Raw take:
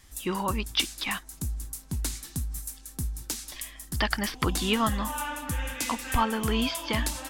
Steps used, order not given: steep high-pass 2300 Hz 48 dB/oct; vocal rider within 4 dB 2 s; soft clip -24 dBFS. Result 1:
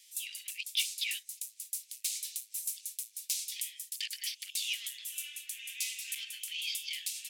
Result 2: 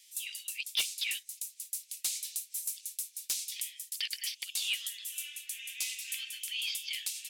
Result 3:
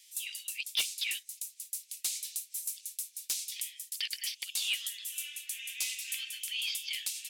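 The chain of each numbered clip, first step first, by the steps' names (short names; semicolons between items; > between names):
vocal rider > soft clip > steep high-pass; vocal rider > steep high-pass > soft clip; steep high-pass > vocal rider > soft clip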